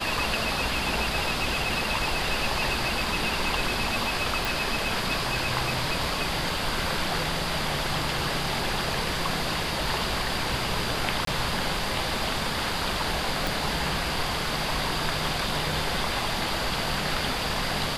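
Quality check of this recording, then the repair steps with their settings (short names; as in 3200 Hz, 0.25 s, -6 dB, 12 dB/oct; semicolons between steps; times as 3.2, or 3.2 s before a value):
4.45 pop
11.25–11.27 gap 23 ms
13.47 pop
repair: de-click; interpolate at 11.25, 23 ms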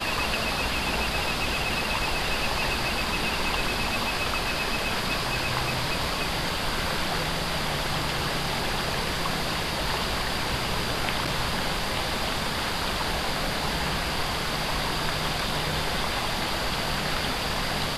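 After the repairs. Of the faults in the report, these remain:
13.47 pop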